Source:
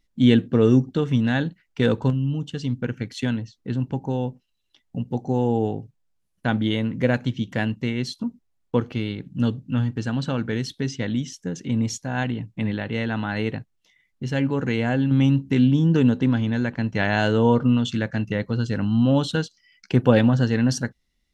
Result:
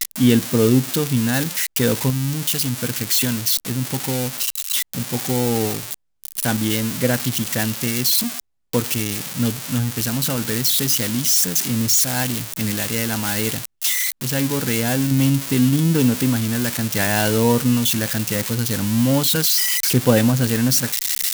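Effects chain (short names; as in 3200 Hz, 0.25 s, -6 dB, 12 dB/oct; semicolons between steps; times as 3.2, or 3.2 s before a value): switching spikes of -11 dBFS; gain +1 dB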